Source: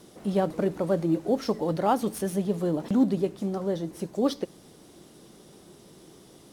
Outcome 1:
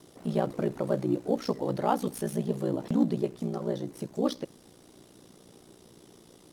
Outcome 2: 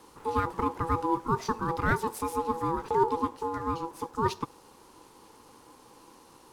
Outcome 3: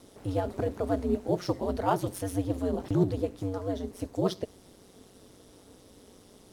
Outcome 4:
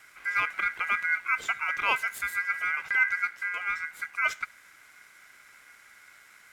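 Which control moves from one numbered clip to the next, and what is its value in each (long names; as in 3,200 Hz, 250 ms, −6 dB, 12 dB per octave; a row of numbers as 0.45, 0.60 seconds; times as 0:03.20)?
ring modulation, frequency: 30, 660, 95, 1,800 Hertz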